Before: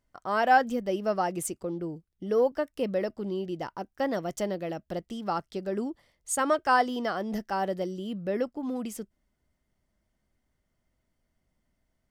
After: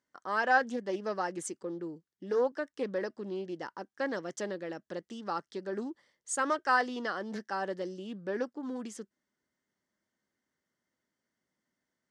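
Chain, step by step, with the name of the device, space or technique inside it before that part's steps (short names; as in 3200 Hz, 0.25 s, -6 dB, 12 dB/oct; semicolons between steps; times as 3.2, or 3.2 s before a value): full-range speaker at full volume (Doppler distortion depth 0.17 ms; speaker cabinet 240–8500 Hz, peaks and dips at 680 Hz -8 dB, 1700 Hz +6 dB, 2500 Hz -6 dB, 6100 Hz +3 dB); gain -3 dB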